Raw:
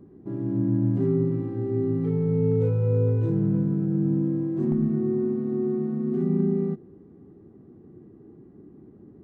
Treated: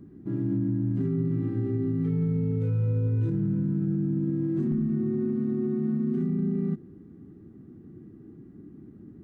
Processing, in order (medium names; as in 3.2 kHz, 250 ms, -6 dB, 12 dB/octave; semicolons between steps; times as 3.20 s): high-order bell 640 Hz -9 dB; peak limiter -23 dBFS, peak gain reduction 9 dB; trim +3 dB